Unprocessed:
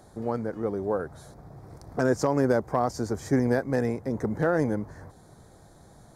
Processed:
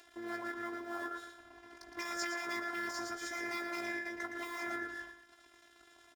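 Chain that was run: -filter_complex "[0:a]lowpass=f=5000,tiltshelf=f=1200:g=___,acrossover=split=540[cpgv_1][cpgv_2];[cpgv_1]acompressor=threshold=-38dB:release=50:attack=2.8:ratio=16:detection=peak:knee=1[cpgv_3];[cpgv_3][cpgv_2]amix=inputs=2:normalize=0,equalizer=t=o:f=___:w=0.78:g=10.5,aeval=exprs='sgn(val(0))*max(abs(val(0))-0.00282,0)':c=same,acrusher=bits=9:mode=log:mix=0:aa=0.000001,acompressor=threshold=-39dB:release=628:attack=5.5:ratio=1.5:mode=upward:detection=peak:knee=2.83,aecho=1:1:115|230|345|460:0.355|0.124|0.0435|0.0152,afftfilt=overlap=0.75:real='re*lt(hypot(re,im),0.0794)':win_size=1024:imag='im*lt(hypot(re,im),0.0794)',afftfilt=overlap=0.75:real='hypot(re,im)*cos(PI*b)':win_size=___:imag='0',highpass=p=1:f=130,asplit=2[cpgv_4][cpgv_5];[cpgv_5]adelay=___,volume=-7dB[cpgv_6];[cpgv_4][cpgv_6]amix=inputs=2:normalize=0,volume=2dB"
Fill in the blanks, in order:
-4.5, 1700, 512, 18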